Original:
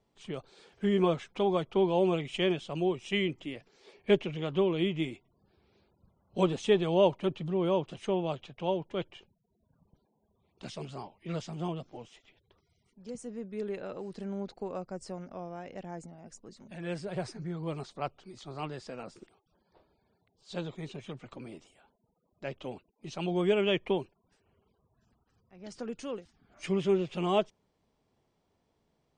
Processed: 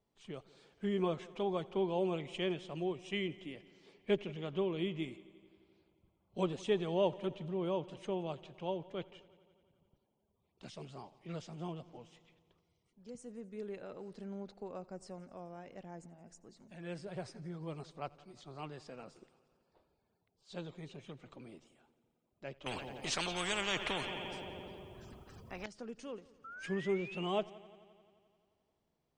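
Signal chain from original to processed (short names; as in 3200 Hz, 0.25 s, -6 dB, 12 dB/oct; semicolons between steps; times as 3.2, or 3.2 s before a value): 26.44–27.34 painted sound rise 1300–3200 Hz -41 dBFS; multi-head echo 87 ms, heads first and second, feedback 65%, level -24 dB; 22.66–25.66 spectral compressor 4:1; gain -7.5 dB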